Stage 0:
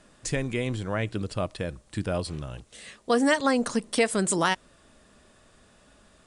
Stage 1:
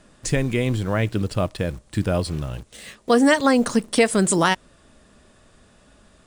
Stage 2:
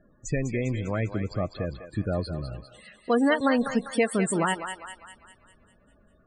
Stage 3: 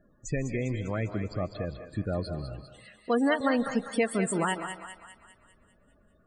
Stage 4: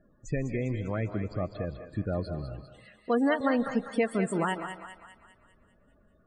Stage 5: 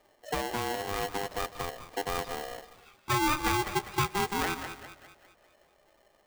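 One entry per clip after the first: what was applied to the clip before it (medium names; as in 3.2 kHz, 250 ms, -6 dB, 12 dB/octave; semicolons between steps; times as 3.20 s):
bass shelf 320 Hz +4 dB; in parallel at -9 dB: bit crusher 7-bit; on the sum: trim +2 dB
loudest bins only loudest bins 32; thinning echo 200 ms, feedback 55%, high-pass 710 Hz, level -7 dB; trim -6 dB
reverberation RT60 0.65 s, pre-delay 115 ms, DRR 13.5 dB; trim -3 dB
treble shelf 4.1 kHz -11.5 dB
median filter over 5 samples; polarity switched at an audio rate 600 Hz; trim -2 dB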